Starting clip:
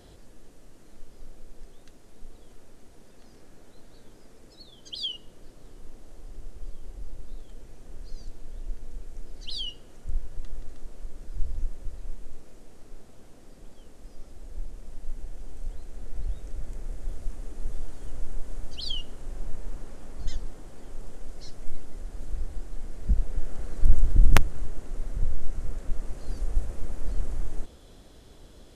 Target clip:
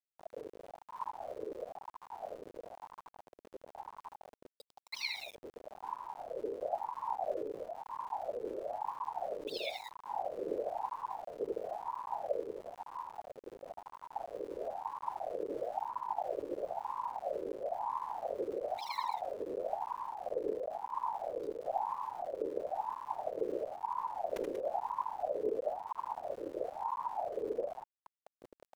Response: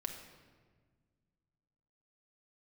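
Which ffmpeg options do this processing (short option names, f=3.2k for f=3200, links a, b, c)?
-af "adynamicequalizer=threshold=0.001:dfrequency=110:dqfactor=5.5:tfrequency=110:tqfactor=5.5:attack=5:release=100:ratio=0.375:range=3.5:mode=boostabove:tftype=bell,areverse,acompressor=threshold=-29dB:ratio=20,areverse,anlmdn=0.631,afftfilt=real='hypot(re,im)*cos(2*PI*random(0))':imag='hypot(re,im)*sin(2*PI*random(1))':win_size=512:overlap=0.75,acompressor=mode=upward:threshold=-57dB:ratio=2.5,aecho=1:1:78.72|186.6:0.501|0.316,aeval=exprs='val(0)*gte(abs(val(0)),0.00299)':c=same,aeval=exprs='val(0)*sin(2*PI*710*n/s+710*0.4/1*sin(2*PI*1*n/s))':c=same,volume=4dB"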